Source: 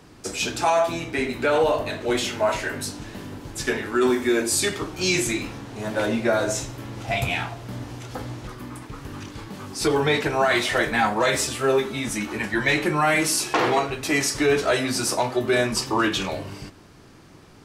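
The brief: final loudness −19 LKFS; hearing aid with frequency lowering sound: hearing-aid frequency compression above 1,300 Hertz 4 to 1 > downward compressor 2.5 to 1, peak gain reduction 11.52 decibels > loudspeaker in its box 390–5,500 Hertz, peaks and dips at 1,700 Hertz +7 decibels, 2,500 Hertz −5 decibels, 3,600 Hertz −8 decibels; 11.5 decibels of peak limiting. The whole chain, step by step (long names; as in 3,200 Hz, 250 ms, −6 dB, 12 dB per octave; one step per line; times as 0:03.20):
brickwall limiter −19.5 dBFS
hearing-aid frequency compression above 1,300 Hz 4 to 1
downward compressor 2.5 to 1, threshold −37 dBFS
loudspeaker in its box 390–5,500 Hz, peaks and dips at 1,700 Hz +7 dB, 2,500 Hz −5 dB, 3,600 Hz −8 dB
level +16 dB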